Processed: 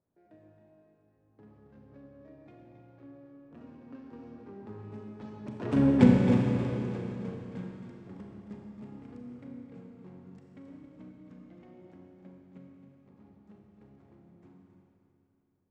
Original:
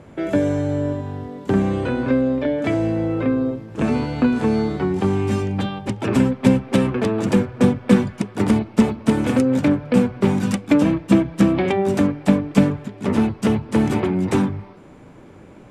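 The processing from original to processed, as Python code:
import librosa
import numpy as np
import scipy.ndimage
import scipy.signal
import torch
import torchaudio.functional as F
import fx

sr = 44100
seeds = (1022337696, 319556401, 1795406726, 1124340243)

y = fx.wiener(x, sr, points=15)
y = fx.doppler_pass(y, sr, speed_mps=24, closest_m=2.3, pass_at_s=5.95)
y = fx.air_absorb(y, sr, metres=78.0)
y = y + 10.0 ** (-10.0 / 20.0) * np.pad(y, (int(270 * sr / 1000.0), 0))[:len(y)]
y = fx.rev_schroeder(y, sr, rt60_s=3.0, comb_ms=29, drr_db=0.0)
y = F.gain(torch.from_numpy(y), -3.5).numpy()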